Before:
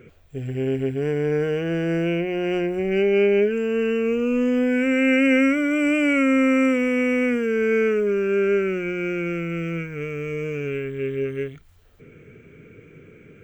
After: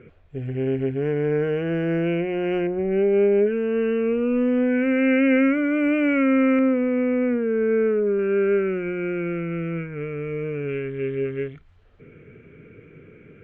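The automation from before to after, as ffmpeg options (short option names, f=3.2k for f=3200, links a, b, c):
-af "asetnsamples=n=441:p=0,asendcmd='2.67 lowpass f 1300;3.46 lowpass f 2000;6.59 lowpass f 1200;8.19 lowpass f 1900;10.69 lowpass f 2900',lowpass=2.5k"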